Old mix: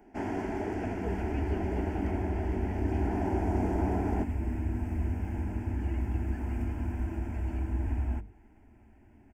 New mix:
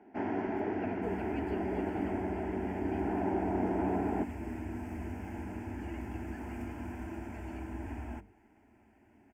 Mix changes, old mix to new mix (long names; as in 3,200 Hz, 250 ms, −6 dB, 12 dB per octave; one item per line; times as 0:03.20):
first sound: add band-pass filter 140–2,700 Hz
second sound: add high-pass filter 280 Hz 6 dB per octave